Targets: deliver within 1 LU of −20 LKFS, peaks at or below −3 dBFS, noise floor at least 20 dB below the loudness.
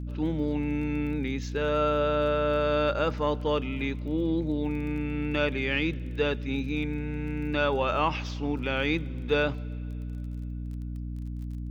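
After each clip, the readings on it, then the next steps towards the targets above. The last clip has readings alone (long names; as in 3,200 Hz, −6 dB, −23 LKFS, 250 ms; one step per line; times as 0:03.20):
crackle rate 22 per second; mains hum 60 Hz; hum harmonics up to 300 Hz; level of the hum −32 dBFS; integrated loudness −29.0 LKFS; sample peak −12.0 dBFS; target loudness −20.0 LKFS
→ click removal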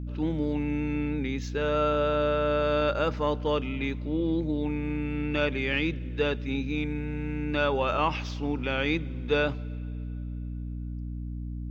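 crackle rate 0 per second; mains hum 60 Hz; hum harmonics up to 300 Hz; level of the hum −32 dBFS
→ mains-hum notches 60/120/180/240/300 Hz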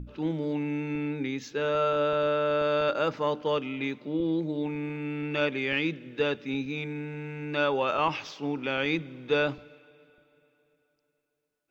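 mains hum none found; integrated loudness −29.0 LKFS; sample peak −12.5 dBFS; target loudness −20.0 LKFS
→ level +9 dB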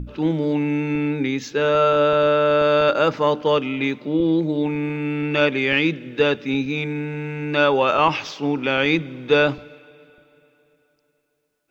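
integrated loudness −20.0 LKFS; sample peak −3.5 dBFS; background noise floor −68 dBFS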